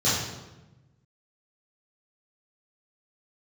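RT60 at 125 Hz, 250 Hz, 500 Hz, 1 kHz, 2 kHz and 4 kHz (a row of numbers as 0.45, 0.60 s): 1.7, 1.4, 1.1, 1.0, 0.90, 0.80 s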